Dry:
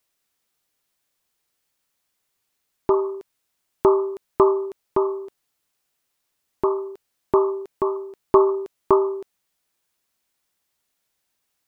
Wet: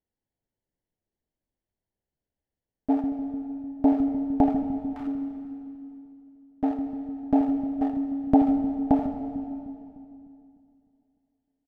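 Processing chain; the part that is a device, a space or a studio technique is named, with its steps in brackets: local Wiener filter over 25 samples; 4.62–5.07 s: steep high-pass 1.3 kHz 72 dB/octave; feedback echo behind a low-pass 151 ms, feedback 70%, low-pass 510 Hz, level -8.5 dB; monster voice (pitch shift -6 st; bass shelf 100 Hz +8 dB; delay 82 ms -11 dB; reverberation RT60 2.5 s, pre-delay 118 ms, DRR 9 dB); trim -4.5 dB

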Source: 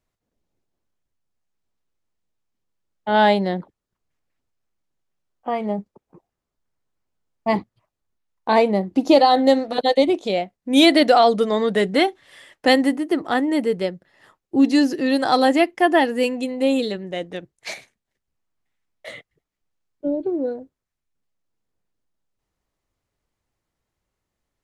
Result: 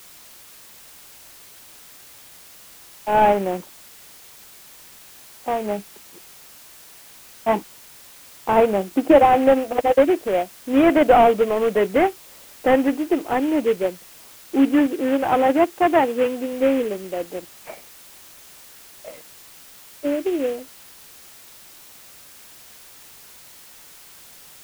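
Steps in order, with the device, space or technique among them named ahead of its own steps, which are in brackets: local Wiener filter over 25 samples; army field radio (band-pass 310–2800 Hz; CVSD coder 16 kbps; white noise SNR 23 dB); 14.86–16.53 s: high-pass 110 Hz 6 dB/octave; trim +4 dB

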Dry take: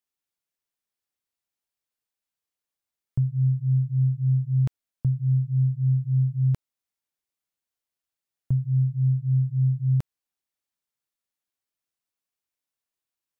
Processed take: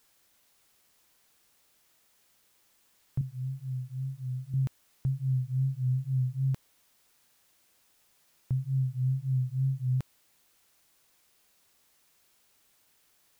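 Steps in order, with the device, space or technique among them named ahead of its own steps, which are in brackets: 3.21–4.54 s: high-pass 250 Hz 6 dB/octave; noise-reduction cassette on a plain deck (tape noise reduction on one side only encoder only; wow and flutter; white noise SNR 33 dB); trim -6.5 dB

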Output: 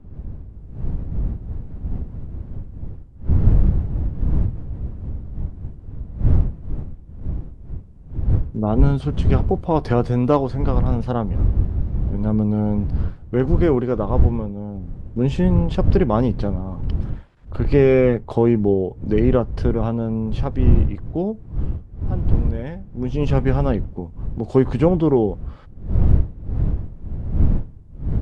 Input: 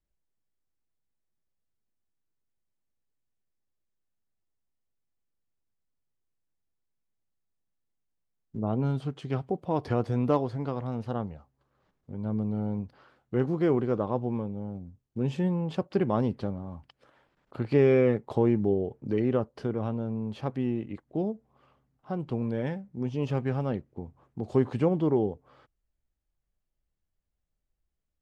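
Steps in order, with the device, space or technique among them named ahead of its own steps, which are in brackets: smartphone video outdoors (wind noise 82 Hz -28 dBFS; level rider gain up to 12 dB; trim -1 dB; AAC 96 kbps 24 kHz)

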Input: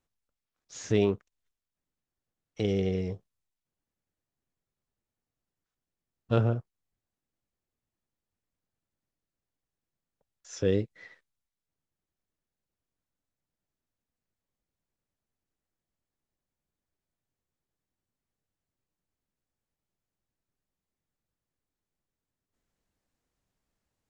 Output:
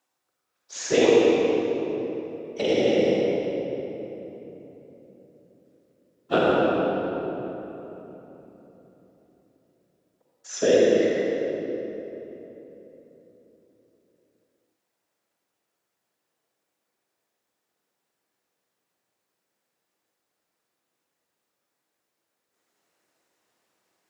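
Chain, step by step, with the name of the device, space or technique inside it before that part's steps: whispering ghost (whisper effect; high-pass 410 Hz 12 dB/octave; reverberation RT60 3.6 s, pre-delay 40 ms, DRR -4.5 dB); trim +8 dB

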